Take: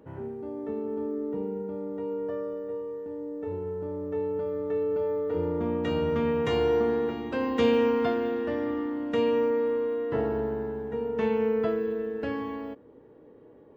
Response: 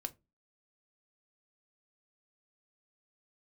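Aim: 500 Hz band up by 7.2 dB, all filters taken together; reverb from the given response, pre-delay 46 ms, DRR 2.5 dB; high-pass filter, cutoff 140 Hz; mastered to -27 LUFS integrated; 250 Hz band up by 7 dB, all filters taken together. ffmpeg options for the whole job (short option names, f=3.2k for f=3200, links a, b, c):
-filter_complex "[0:a]highpass=140,equalizer=f=250:t=o:g=7,equalizer=f=500:t=o:g=6,asplit=2[a][b];[1:a]atrim=start_sample=2205,adelay=46[c];[b][c]afir=irnorm=-1:irlink=0,volume=-1dB[d];[a][d]amix=inputs=2:normalize=0,volume=-3.5dB"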